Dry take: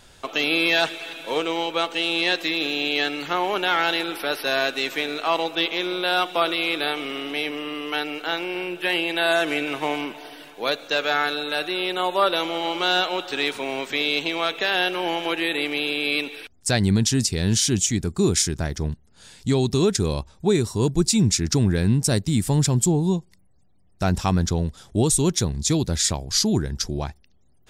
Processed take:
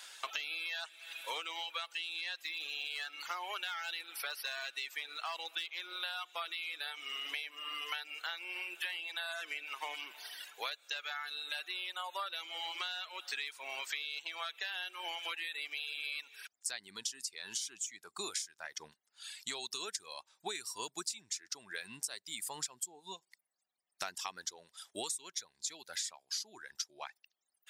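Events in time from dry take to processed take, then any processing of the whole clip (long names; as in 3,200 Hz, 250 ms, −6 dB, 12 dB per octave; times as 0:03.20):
0:02.43–0:05.96: hard clipping −15 dBFS
0:25.37–0:25.98: notch filter 1,200 Hz, Q 8.2
whole clip: reverb reduction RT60 1.9 s; high-pass filter 1,300 Hz 12 dB per octave; downward compressor 16 to 1, threshold −40 dBFS; level +3.5 dB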